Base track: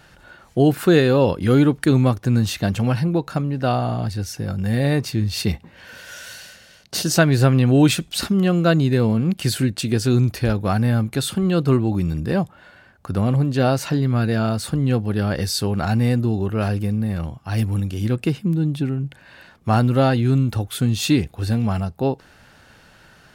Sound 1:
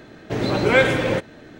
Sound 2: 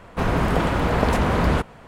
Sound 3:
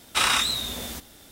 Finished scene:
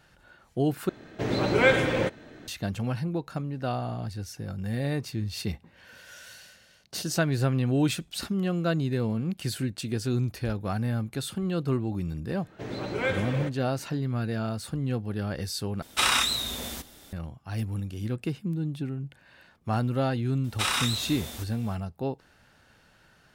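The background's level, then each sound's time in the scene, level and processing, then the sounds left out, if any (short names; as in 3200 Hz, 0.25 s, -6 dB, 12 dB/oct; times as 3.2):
base track -10 dB
0.89 replace with 1 -4.5 dB
12.29 add 1 -12.5 dB
15.82 replace with 3 -1.5 dB
20.44 add 3 -5.5 dB
not used: 2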